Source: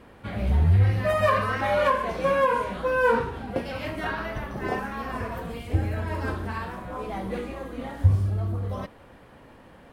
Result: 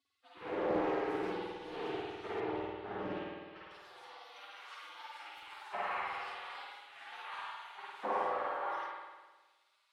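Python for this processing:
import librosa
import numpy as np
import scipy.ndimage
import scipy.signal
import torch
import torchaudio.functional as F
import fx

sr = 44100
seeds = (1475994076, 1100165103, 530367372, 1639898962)

p1 = fx.spec_gate(x, sr, threshold_db=-30, keep='weak')
p2 = fx.schmitt(p1, sr, flips_db=-40.5)
p3 = p1 + F.gain(torch.from_numpy(p2), -10.5).numpy()
p4 = fx.rev_spring(p3, sr, rt60_s=1.3, pass_ms=(51,), chirp_ms=40, drr_db=-5.5)
p5 = 10.0 ** (-34.5 / 20.0) * np.tanh(p4 / 10.0 ** (-34.5 / 20.0))
p6 = p5 + fx.room_early_taps(p5, sr, ms=(10, 49), db=(-6.0, -5.5), dry=0)
p7 = fx.filter_sweep_bandpass(p6, sr, from_hz=400.0, to_hz=880.0, start_s=3.47, end_s=4.47, q=1.6)
p8 = fx.air_absorb(p7, sr, metres=150.0, at=(2.4, 3.71))
p9 = fx.doppler_dist(p8, sr, depth_ms=0.25)
y = F.gain(torch.from_numpy(p9), 10.5).numpy()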